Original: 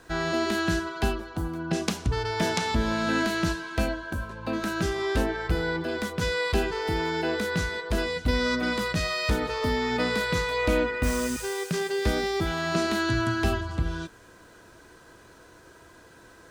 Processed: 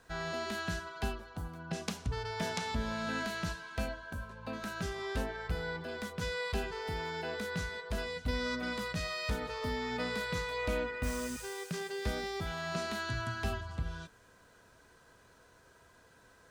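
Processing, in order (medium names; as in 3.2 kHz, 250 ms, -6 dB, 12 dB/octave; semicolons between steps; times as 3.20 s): peaking EQ 330 Hz -13.5 dB 0.22 oct; trim -9 dB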